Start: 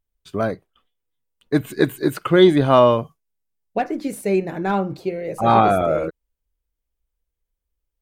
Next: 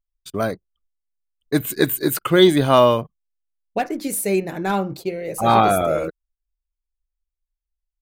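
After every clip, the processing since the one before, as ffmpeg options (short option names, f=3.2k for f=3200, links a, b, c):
-af "aemphasis=mode=production:type=75kf,anlmdn=0.398,volume=-1dB"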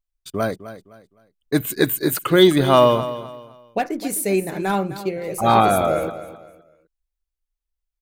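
-af "aecho=1:1:257|514|771:0.2|0.0599|0.018"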